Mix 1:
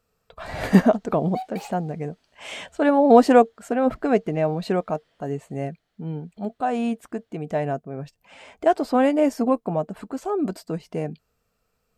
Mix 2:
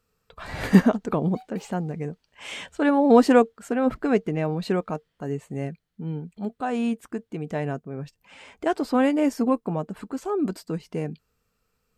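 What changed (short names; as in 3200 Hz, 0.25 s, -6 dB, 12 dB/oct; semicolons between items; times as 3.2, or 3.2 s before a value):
background -9.5 dB; master: add bell 660 Hz -8.5 dB 0.5 oct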